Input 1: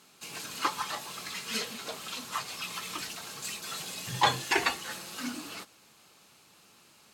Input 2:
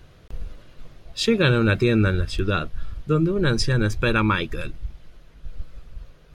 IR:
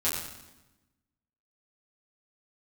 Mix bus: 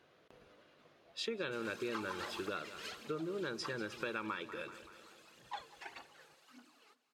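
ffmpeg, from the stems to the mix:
-filter_complex "[0:a]aphaser=in_gain=1:out_gain=1:delay=2.6:decay=0.59:speed=1.7:type=triangular,adelay=1300,volume=-5dB,afade=type=out:start_time=2.32:duration=0.39:silence=0.446684,afade=type=out:start_time=3.97:duration=0.57:silence=0.298538,asplit=2[link_01][link_02];[link_02]volume=-20.5dB[link_03];[1:a]volume=-9dB,asplit=2[link_04][link_05];[link_05]volume=-17dB[link_06];[link_03][link_06]amix=inputs=2:normalize=0,aecho=0:1:191|382|573|764|955|1146|1337|1528:1|0.56|0.314|0.176|0.0983|0.0551|0.0308|0.0173[link_07];[link_01][link_04][link_07]amix=inputs=3:normalize=0,highpass=340,highshelf=frequency=5300:gain=-11,acompressor=threshold=-37dB:ratio=4"

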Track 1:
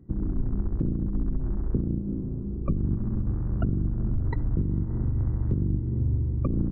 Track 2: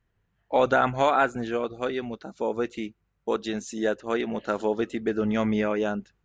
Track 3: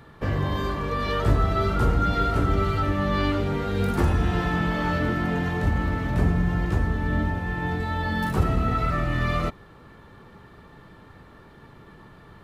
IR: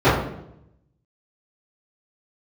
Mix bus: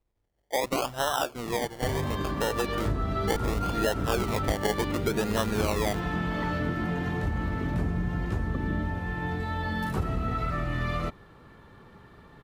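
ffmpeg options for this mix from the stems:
-filter_complex "[0:a]highpass=frequency=150:width=0.5412,highpass=frequency=150:width=1.3066,adelay=2100,volume=-2.5dB[link_01];[1:a]equalizer=frequency=190:width_type=o:width=1.9:gain=-11.5,dynaudnorm=framelen=980:gausssize=3:maxgain=11.5dB,acrusher=samples=27:mix=1:aa=0.000001:lfo=1:lforange=16.2:lforate=0.7,volume=-1.5dB[link_02];[2:a]adelay=1600,volume=-3.5dB[link_03];[link_01][link_02][link_03]amix=inputs=3:normalize=0,acompressor=threshold=-25dB:ratio=3"

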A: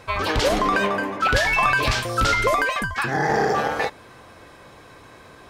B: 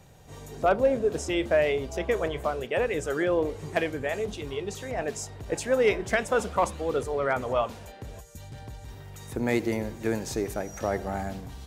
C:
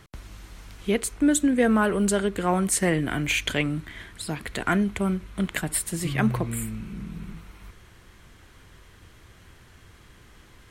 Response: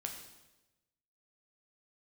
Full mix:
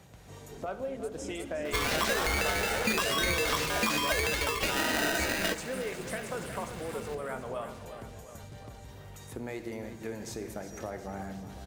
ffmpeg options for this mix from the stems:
-filter_complex "[0:a]acompressor=threshold=-23dB:ratio=10,aeval=exprs='val(0)*sgn(sin(2*PI*1100*n/s))':channel_layout=same,adelay=1650,volume=-3dB,asplit=2[link_01][link_02];[link_02]volume=-16.5dB[link_03];[1:a]acompressor=threshold=-26dB:ratio=3,volume=-3.5dB,asplit=3[link_04][link_05][link_06];[link_05]volume=-8.5dB[link_07];[link_06]volume=-15.5dB[link_08];[2:a]acompressor=threshold=-25dB:ratio=6,volume=-10.5dB,asplit=2[link_09][link_10];[link_10]volume=-7.5dB[link_11];[link_04][link_09]amix=inputs=2:normalize=0,highpass=61,acompressor=threshold=-48dB:ratio=2,volume=0dB[link_12];[3:a]atrim=start_sample=2205[link_13];[link_07][link_13]afir=irnorm=-1:irlink=0[link_14];[link_03][link_08][link_11]amix=inputs=3:normalize=0,aecho=0:1:361|722|1083|1444|1805|2166|2527|2888|3249:1|0.58|0.336|0.195|0.113|0.0656|0.0381|0.0221|0.0128[link_15];[link_01][link_12][link_14][link_15]amix=inputs=4:normalize=0"

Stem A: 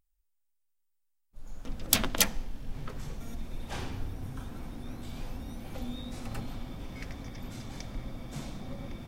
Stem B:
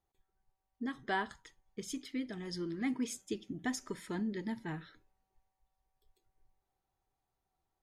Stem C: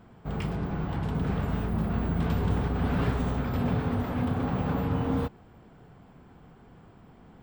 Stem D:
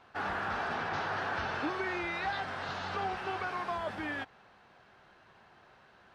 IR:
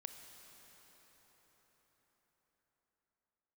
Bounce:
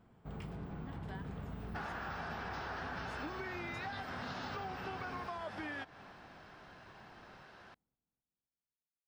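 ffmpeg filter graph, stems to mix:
-filter_complex "[1:a]volume=-13dB[link_01];[2:a]volume=-11.5dB,asplit=2[link_02][link_03];[link_03]volume=-21.5dB[link_04];[3:a]equalizer=frequency=5200:width_type=o:width=0.24:gain=6,adelay=1600,volume=2.5dB,asplit=2[link_05][link_06];[link_06]volume=-13.5dB[link_07];[4:a]atrim=start_sample=2205[link_08];[link_07][link_08]afir=irnorm=-1:irlink=0[link_09];[link_04]aecho=0:1:260|520|780|1040|1300|1560|1820:1|0.51|0.26|0.133|0.0677|0.0345|0.0176[link_10];[link_01][link_02][link_05][link_09][link_10]amix=inputs=5:normalize=0,acompressor=threshold=-40dB:ratio=6"

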